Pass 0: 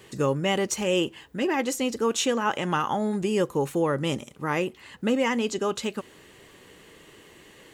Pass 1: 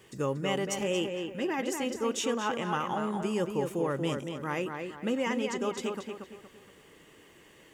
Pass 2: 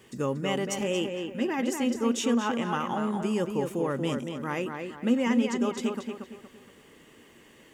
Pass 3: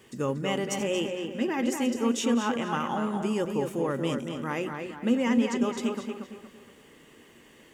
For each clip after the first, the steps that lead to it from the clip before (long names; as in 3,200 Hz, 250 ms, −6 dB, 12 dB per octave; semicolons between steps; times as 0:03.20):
notch filter 4,100 Hz, Q 8.8; bit-depth reduction 12 bits, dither triangular; tape delay 232 ms, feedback 41%, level −4 dB, low-pass 3,100 Hz; level −6.5 dB
parametric band 240 Hz +11 dB 0.22 octaves; level +1 dB
feedback delay that plays each chunk backwards 128 ms, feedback 47%, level −12.5 dB; mains-hum notches 60/120/180 Hz